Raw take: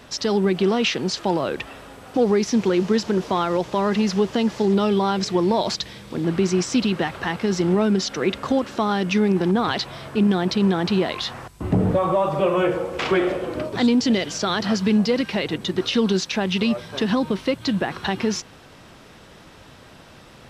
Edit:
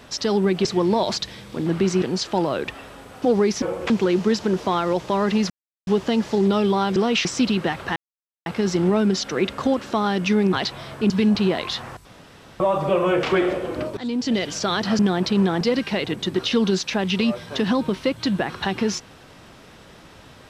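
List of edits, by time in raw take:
0.65–0.94 s: swap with 5.23–6.60 s
4.14 s: insert silence 0.37 s
7.31 s: insert silence 0.50 s
9.38–9.67 s: delete
10.24–10.86 s: swap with 14.78–15.03 s
11.56–12.11 s: room tone
12.74–13.02 s: move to 2.54 s
13.76–14.27 s: fade in, from -15.5 dB

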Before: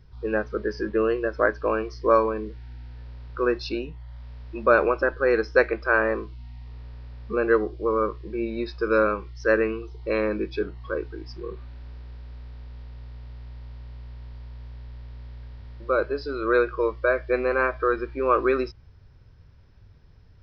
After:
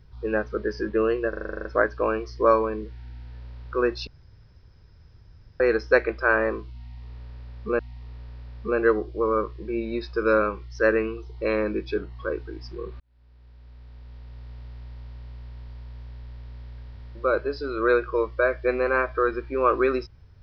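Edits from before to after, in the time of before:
1.29 s: stutter 0.04 s, 10 plays
3.71–5.24 s: room tone
6.44–7.43 s: loop, 2 plays
11.65–13.19 s: fade in

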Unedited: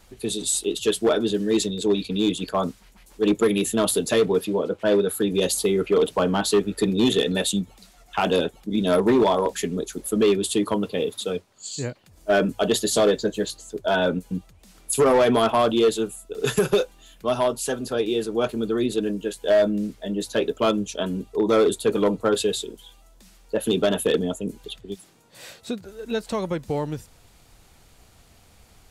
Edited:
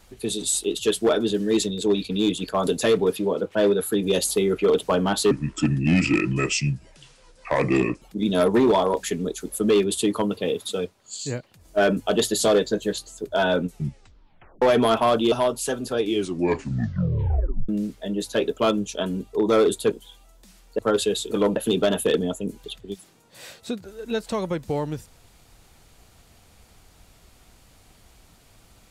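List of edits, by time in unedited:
2.67–3.95 s: delete
6.59–8.54 s: speed 72%
14.17 s: tape stop 0.97 s
15.84–17.32 s: delete
18.01 s: tape stop 1.68 s
21.92–22.17 s: swap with 22.69–23.56 s

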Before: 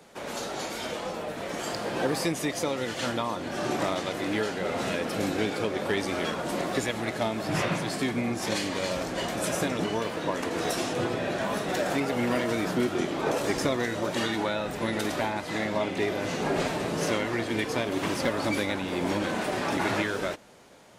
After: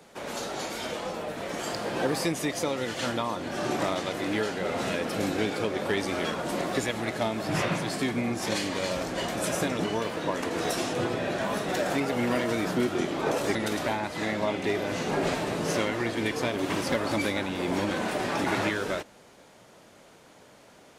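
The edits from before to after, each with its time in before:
13.55–14.88 s: delete

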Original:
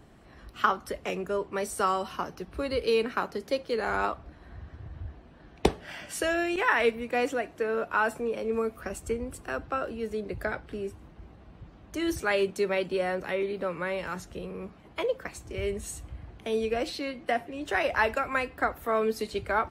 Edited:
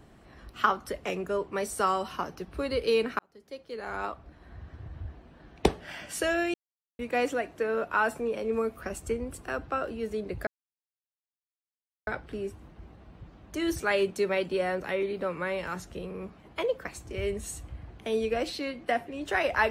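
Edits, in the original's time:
3.19–4.79 s: fade in
6.54–6.99 s: mute
10.47 s: insert silence 1.60 s

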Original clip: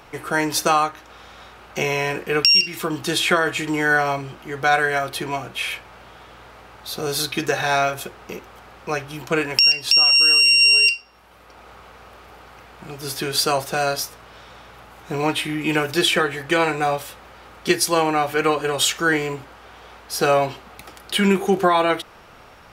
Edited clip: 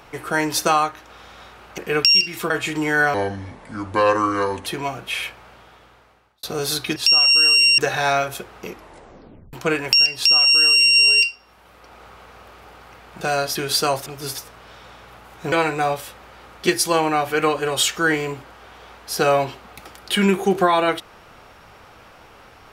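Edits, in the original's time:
1.78–2.18 s: delete
2.90–3.42 s: delete
4.06–5.14 s: speed 71%
5.73–6.91 s: fade out
8.34 s: tape stop 0.85 s
9.81–10.63 s: copy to 7.44 s
12.87–13.19 s: swap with 13.70–14.04 s
15.18–16.54 s: delete

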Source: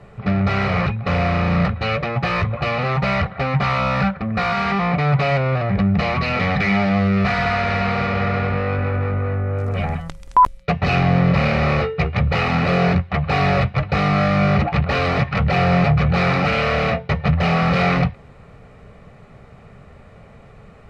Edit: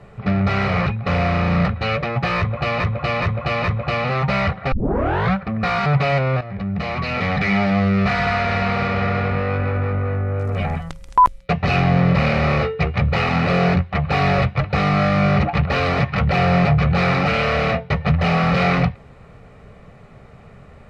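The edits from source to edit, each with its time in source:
2.38–2.80 s: loop, 4 plays
3.46 s: tape start 0.63 s
4.60–5.05 s: delete
5.60–7.05 s: fade in equal-power, from -13.5 dB

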